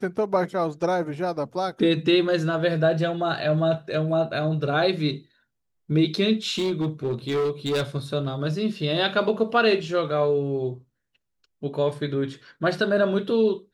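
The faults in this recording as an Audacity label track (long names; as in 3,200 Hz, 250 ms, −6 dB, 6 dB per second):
6.540000	7.830000	clipping −20.5 dBFS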